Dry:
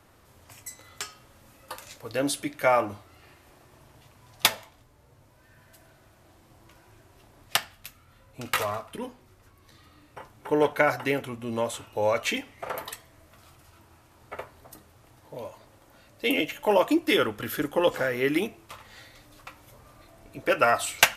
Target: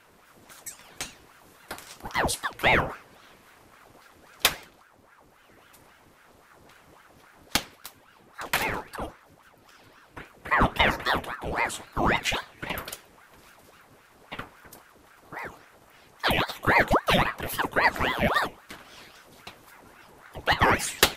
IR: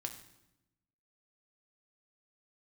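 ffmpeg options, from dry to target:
-af "acontrast=61,aeval=exprs='val(0)*sin(2*PI*850*n/s+850*0.8/3.7*sin(2*PI*3.7*n/s))':c=same,volume=0.75"

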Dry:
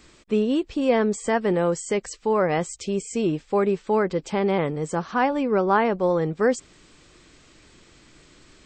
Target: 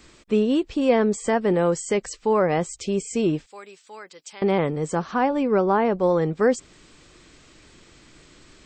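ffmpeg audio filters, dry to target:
-filter_complex "[0:a]asettb=1/sr,asplit=3[s0][s1][s2];[s0]atrim=end=3.464[s3];[s1]atrim=start=3.46:end=4.42,asetpts=PTS-STARTPTS,afade=t=in:d=0.004:c=qsin,afade=t=out:st=0.956:d=0.004:c=qsin,aderivative[s4];[s2]atrim=start=4.416[s5];[s3][s4]acrossfade=d=0.004:c1=hsin:c2=qsin[s6];[s6][s5]acrossfade=d=0.004:c1=qsin:c2=hsin,acrossover=split=880[s7][s8];[s8]alimiter=limit=0.0891:level=0:latency=1:release=315[s9];[s7][s9]amix=inputs=2:normalize=0,volume=1.19"

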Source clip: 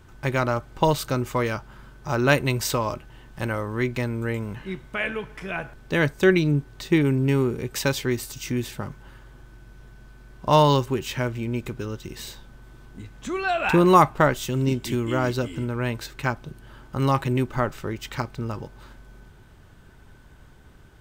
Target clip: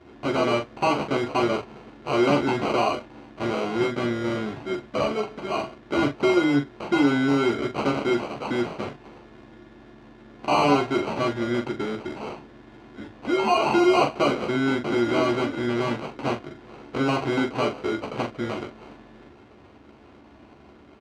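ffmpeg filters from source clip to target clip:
-af "aecho=1:1:3:0.85,acrusher=samples=25:mix=1:aa=0.000001,tremolo=f=270:d=0.462,asoftclip=type=tanh:threshold=0.0794,highpass=160,lowpass=3400,aecho=1:1:14|42:0.531|0.473,volume=1.68"

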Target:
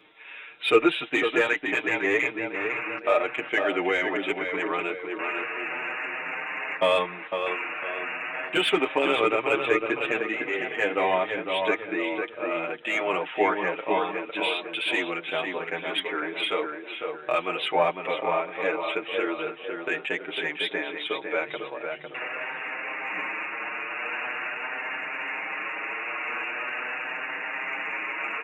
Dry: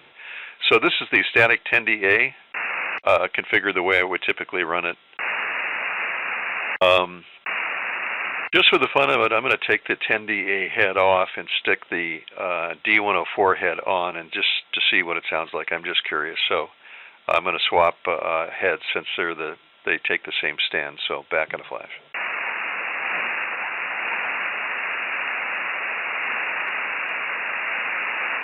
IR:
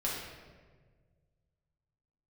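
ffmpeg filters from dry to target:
-filter_complex "[0:a]equalizer=f=87:w=2.4:g=-8.5,aecho=1:1:6.5:0.37,asplit=2[s0][s1];[s1]adelay=504,lowpass=f=2400:p=1,volume=0.562,asplit=2[s2][s3];[s3]adelay=504,lowpass=f=2400:p=1,volume=0.46,asplit=2[s4][s5];[s5]adelay=504,lowpass=f=2400:p=1,volume=0.46,asplit=2[s6][s7];[s7]adelay=504,lowpass=f=2400:p=1,volume=0.46,asplit=2[s8][s9];[s9]adelay=504,lowpass=f=2400:p=1,volume=0.46,asplit=2[s10][s11];[s11]adelay=504,lowpass=f=2400:p=1,volume=0.46[s12];[s0][s2][s4][s6][s8][s10][s12]amix=inputs=7:normalize=0,acrossover=split=2000[s13][s14];[s14]asoftclip=type=tanh:threshold=0.188[s15];[s13][s15]amix=inputs=2:normalize=0,equalizer=f=320:w=1.1:g=6.5,asplit=2[s16][s17];[s17]adelay=7,afreqshift=0.43[s18];[s16][s18]amix=inputs=2:normalize=1,volume=0.596"

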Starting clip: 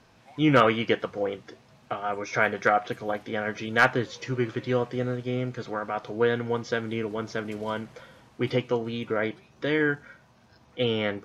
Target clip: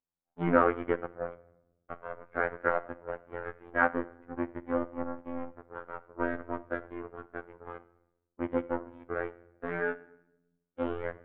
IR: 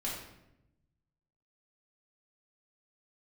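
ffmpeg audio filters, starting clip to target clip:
-filter_complex "[0:a]acontrast=85,aeval=exprs='0.631*(cos(1*acos(clip(val(0)/0.631,-1,1)))-cos(1*PI/2))+0.141*(cos(2*acos(clip(val(0)/0.631,-1,1)))-cos(2*PI/2))+0.0631*(cos(4*acos(clip(val(0)/0.631,-1,1)))-cos(4*PI/2))+0.0891*(cos(7*acos(clip(val(0)/0.631,-1,1)))-cos(7*PI/2))':c=same,asplit=2[s0][s1];[1:a]atrim=start_sample=2205[s2];[s1][s2]afir=irnorm=-1:irlink=0,volume=0.141[s3];[s0][s3]amix=inputs=2:normalize=0,afftfilt=real='hypot(re,im)*cos(PI*b)':imag='0':win_size=2048:overlap=0.75,lowpass=f=1600:w=0.5412,lowpass=f=1600:w=1.3066,volume=0.422"

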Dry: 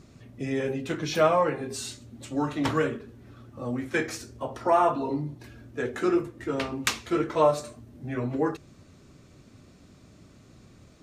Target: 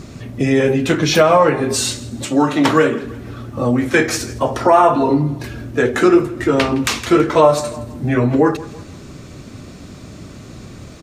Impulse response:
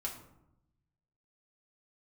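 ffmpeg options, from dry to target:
-filter_complex "[0:a]aecho=1:1:164|328|492:0.0891|0.0303|0.0103,asplit=2[s0][s1];[s1]acompressor=threshold=0.0224:ratio=6,volume=1.26[s2];[s0][s2]amix=inputs=2:normalize=0,asettb=1/sr,asplit=3[s3][s4][s5];[s3]atrim=end=2.244[s6];[s4]atrim=start=2.24:end=3.04,asetpts=PTS-STARTPTS,afade=t=in:d=0.004:c=qsin,afade=t=out:st=0.796:d=0.004:c=qsin,highpass=170[s7];[s5]atrim=start=3.036[s8];[s6][s7]acrossfade=d=0.004:c1=hsin:c2=qsin[s9];[s9][s8]acrossfade=d=0.004:c1=qsin:c2=hsin,alimiter=level_in=3.76:limit=0.891:release=50:level=0:latency=1,volume=0.891"

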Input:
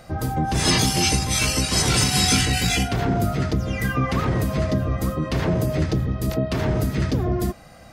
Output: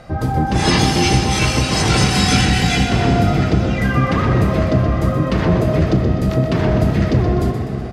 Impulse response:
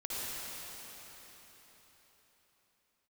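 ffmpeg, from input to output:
-filter_complex "[0:a]aemphasis=mode=reproduction:type=50fm,asplit=7[s0][s1][s2][s3][s4][s5][s6];[s1]adelay=125,afreqshift=33,volume=0.355[s7];[s2]adelay=250,afreqshift=66,volume=0.182[s8];[s3]adelay=375,afreqshift=99,volume=0.0923[s9];[s4]adelay=500,afreqshift=132,volume=0.0473[s10];[s5]adelay=625,afreqshift=165,volume=0.024[s11];[s6]adelay=750,afreqshift=198,volume=0.0123[s12];[s0][s7][s8][s9][s10][s11][s12]amix=inputs=7:normalize=0,asplit=2[s13][s14];[1:a]atrim=start_sample=2205,lowpass=6800,adelay=40[s15];[s14][s15]afir=irnorm=-1:irlink=0,volume=0.282[s16];[s13][s16]amix=inputs=2:normalize=0,volume=1.78"

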